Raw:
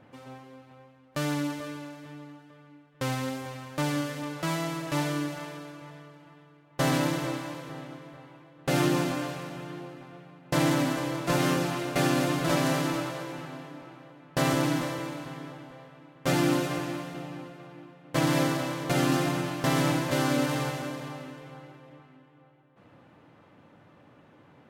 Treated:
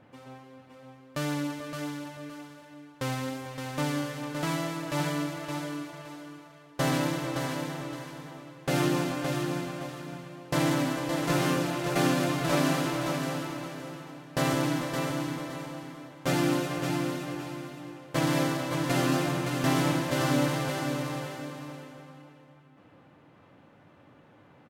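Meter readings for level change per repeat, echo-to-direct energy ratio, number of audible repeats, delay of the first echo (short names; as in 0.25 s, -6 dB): -11.0 dB, -5.0 dB, 2, 0.567 s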